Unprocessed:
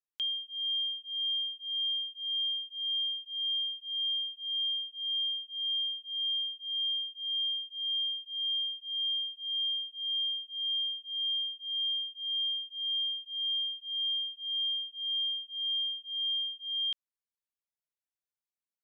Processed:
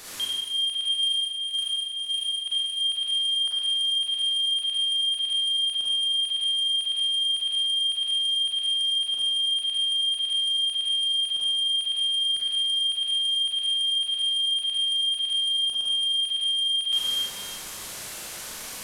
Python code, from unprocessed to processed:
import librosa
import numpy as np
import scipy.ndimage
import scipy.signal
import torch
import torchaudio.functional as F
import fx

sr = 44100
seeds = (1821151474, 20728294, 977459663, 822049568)

y = fx.delta_mod(x, sr, bps=64000, step_db=-41.5)
y = fx.over_compress(y, sr, threshold_db=-37.0, ratio=-0.5, at=(0.88, 2.46))
y = fx.rev_schroeder(y, sr, rt60_s=1.4, comb_ms=31, drr_db=-6.0)
y = y * 10.0 ** (5.0 / 20.0)